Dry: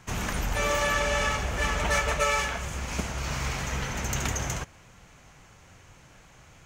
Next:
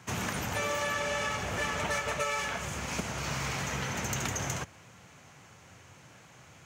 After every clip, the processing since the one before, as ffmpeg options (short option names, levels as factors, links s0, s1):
-af "highpass=f=87:w=0.5412,highpass=f=87:w=1.3066,acompressor=threshold=0.0355:ratio=4"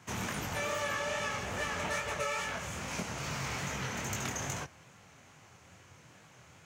-af "flanger=delay=19:depth=7.3:speed=2.4"